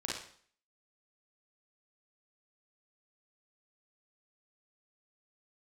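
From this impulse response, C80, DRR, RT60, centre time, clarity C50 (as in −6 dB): 6.5 dB, −5.0 dB, 0.50 s, 53 ms, −0.5 dB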